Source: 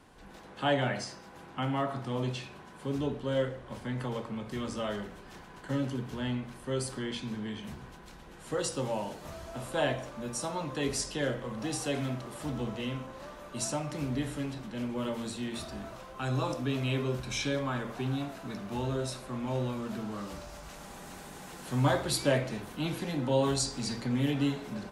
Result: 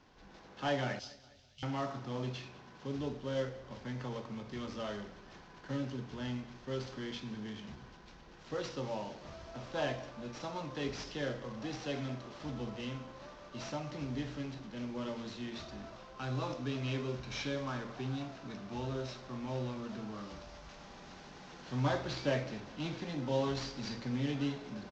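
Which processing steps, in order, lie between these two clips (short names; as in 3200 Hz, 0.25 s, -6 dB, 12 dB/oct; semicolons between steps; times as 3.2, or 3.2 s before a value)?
CVSD 32 kbps; 0.99–1.63 inverse Chebyshev band-stop 200–1600 Hz, stop band 40 dB; feedback echo 0.204 s, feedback 48%, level -21 dB; gain -5.5 dB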